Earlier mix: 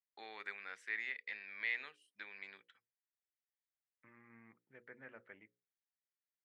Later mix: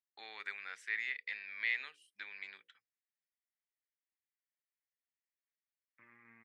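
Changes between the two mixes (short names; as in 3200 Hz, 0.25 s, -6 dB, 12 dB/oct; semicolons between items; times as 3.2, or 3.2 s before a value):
second voice: entry +1.95 s; master: add tilt shelf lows -6 dB, about 1100 Hz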